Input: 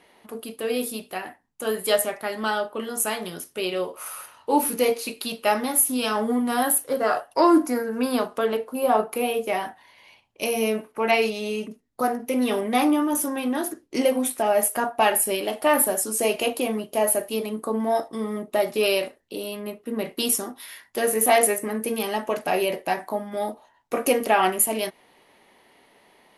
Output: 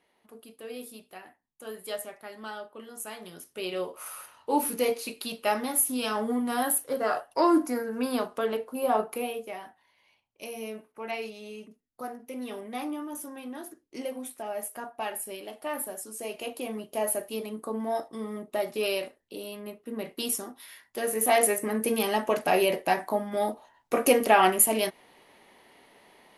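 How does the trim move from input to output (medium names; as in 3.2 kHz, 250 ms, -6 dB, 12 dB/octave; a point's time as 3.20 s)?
3.05 s -14 dB
3.79 s -5 dB
9.12 s -5 dB
9.56 s -14 dB
16.25 s -14 dB
16.88 s -7 dB
21.03 s -7 dB
21.84 s 0 dB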